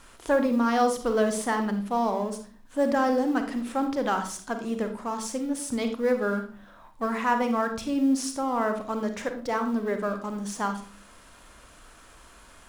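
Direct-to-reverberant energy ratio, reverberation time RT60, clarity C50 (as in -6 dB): 6.5 dB, 0.45 s, 8.5 dB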